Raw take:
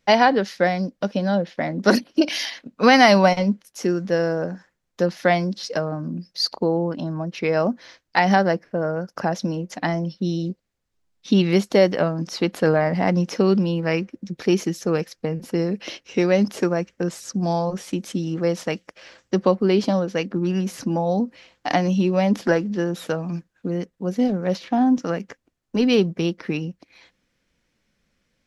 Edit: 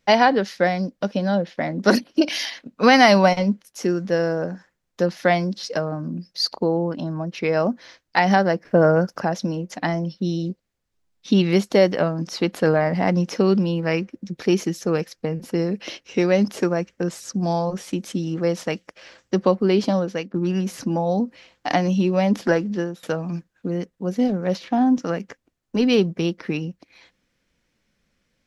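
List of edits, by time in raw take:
8.65–9.17 gain +8.5 dB
20.08–20.34 fade out, to -14 dB
22.77–23.03 fade out, to -22 dB

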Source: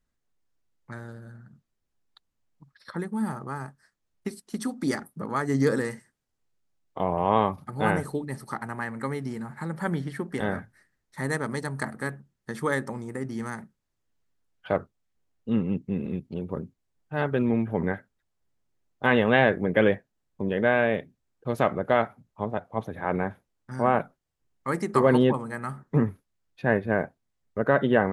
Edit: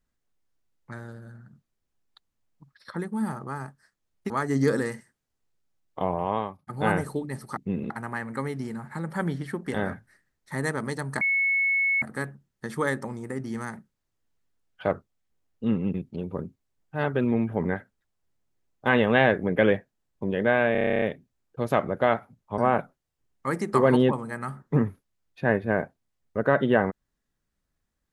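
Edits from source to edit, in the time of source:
4.3–5.29 cut
7.04–7.66 fade out
11.87 add tone 2200 Hz -20.5 dBFS 0.81 s
15.79–16.12 move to 8.56
20.9 stutter 0.03 s, 11 plays
22.46–23.79 cut

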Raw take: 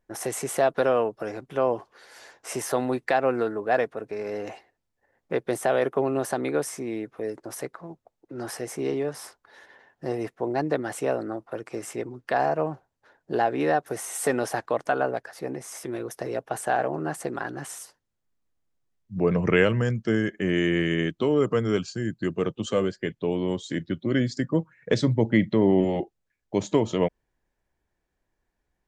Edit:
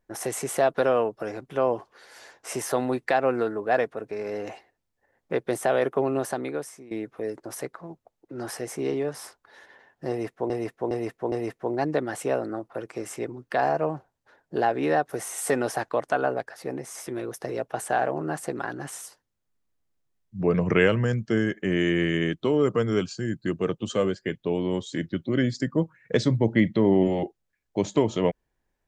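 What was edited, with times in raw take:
6.16–6.91 fade out, to -18 dB
10.09–10.5 loop, 4 plays

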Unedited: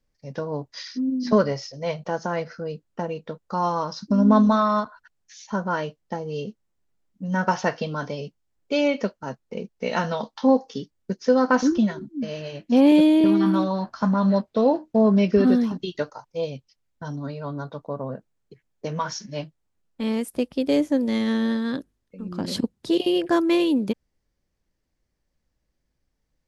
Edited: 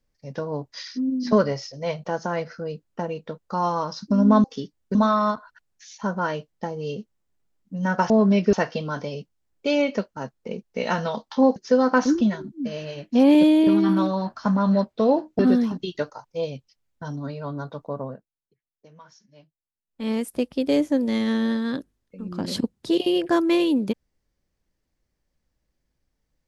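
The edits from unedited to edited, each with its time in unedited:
10.62–11.13 move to 4.44
14.96–15.39 move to 7.59
18.02–20.11 dip -21.5 dB, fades 0.24 s

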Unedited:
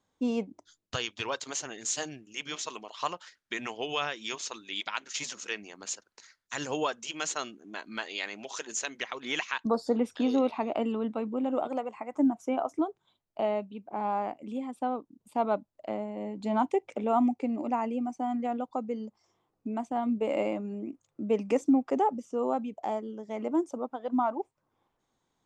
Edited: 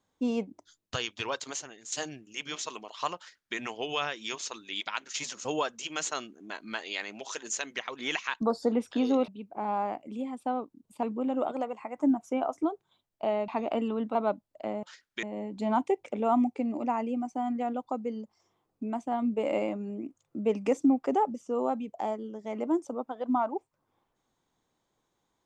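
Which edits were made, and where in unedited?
1.49–1.92 fade out quadratic, to -11.5 dB
3.17–3.57 copy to 16.07
5.45–6.69 cut
10.52–11.19 swap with 13.64–15.39

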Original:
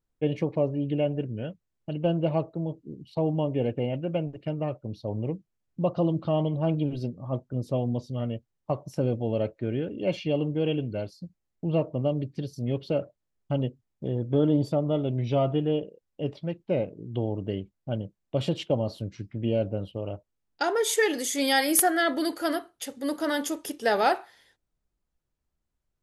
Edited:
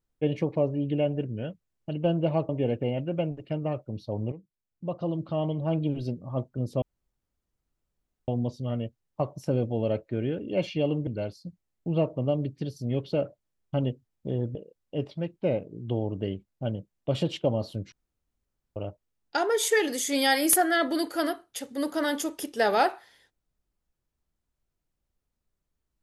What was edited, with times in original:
2.49–3.45 cut
5.28–7.02 fade in, from -13.5 dB
7.78 insert room tone 1.46 s
10.57–10.84 cut
14.32–15.81 cut
19.18–20.02 room tone

